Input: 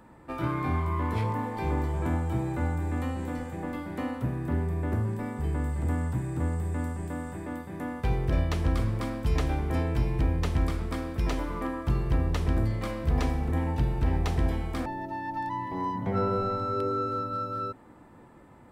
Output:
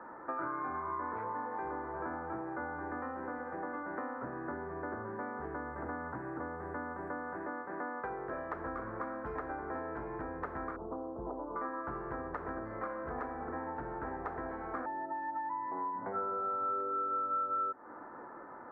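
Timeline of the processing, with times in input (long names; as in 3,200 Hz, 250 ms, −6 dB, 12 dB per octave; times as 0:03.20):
0:07.51–0:08.54: low-shelf EQ 120 Hz −10 dB
0:10.76–0:11.56: Butterworth low-pass 940 Hz
whole clip: three-way crossover with the lows and the highs turned down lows −22 dB, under 300 Hz, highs −23 dB, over 2,500 Hz; downward compressor, threshold −45 dBFS; high shelf with overshoot 2,100 Hz −12 dB, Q 3; level +6 dB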